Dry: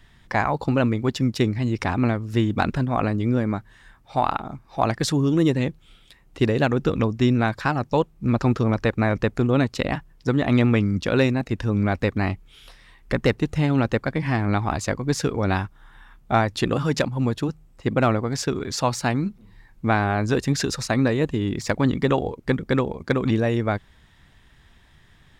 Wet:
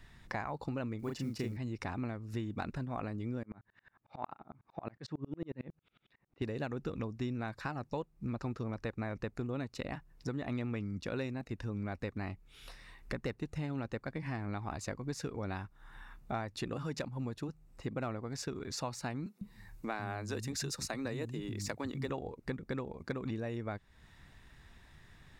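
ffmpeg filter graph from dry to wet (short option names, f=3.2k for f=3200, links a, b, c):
-filter_complex "[0:a]asettb=1/sr,asplit=3[a][b][c];[a]atrim=end=0.994[d];[b]atrim=start=0.99:end=1.57,asetpts=PTS-STARTPTS,afade=t=in:d=0.004:c=qsin,afade=t=out:st=0.576:d=0.004:c=qsin,bandreject=f=3.7k:w=7.9,acrusher=bits=8:mode=log:mix=0:aa=0.000001,asplit=2[e][f];[f]adelay=36,volume=-3dB[g];[e][g]amix=inputs=2:normalize=0,atrim=end_sample=25578[h];[c]atrim=start=1.566[i];[d][h]acrossfade=d=0.004:c1=hsin:c2=qsin[j];[j][i]acrossfade=d=0.004:c1=qsin:c2=hsin,asettb=1/sr,asplit=3[k][l][m];[k]atrim=end=3.434[n];[l]atrim=start=3.43:end=6.42,asetpts=PTS-STARTPTS,afade=t=in:d=0.004:c=qsin,afade=t=out:st=2.986:d=0.004:c=qsin,highpass=110,lowpass=2.7k,aeval=exprs='val(0)*pow(10,-35*if(lt(mod(-11*n/s,1),2*abs(-11)/1000),1-mod(-11*n/s,1)/(2*abs(-11)/1000),(mod(-11*n/s,1)-2*abs(-11)/1000)/(1-2*abs(-11)/1000))/20)':c=same[o];[m]atrim=start=6.416[p];[n][o]acrossfade=d=0.004:c1=hsin:c2=qsin[q];[q][p]acrossfade=d=0.004:c1=qsin:c2=hsin,asettb=1/sr,asplit=3[r][s][t];[r]atrim=end=19.264[u];[s]atrim=start=19.26:end=22.1,asetpts=PTS-STARTPTS,afade=t=in:d=0.004:c=qsin,afade=t=out:st=2.836:d=0.004:c=qsin,aemphasis=mode=production:type=cd,acrossover=split=210[v][w];[v]adelay=150[x];[x][w]amix=inputs=2:normalize=0,atrim=end_sample=125244[y];[t]atrim=start=22.096[z];[u][y]acrossfade=d=0.004:c1=hsin:c2=qsin[aa];[aa][z]acrossfade=d=0.004:c1=qsin:c2=hsin,bandreject=f=3.2k:w=8.7,acompressor=threshold=-38dB:ratio=2.5,volume=-3.5dB"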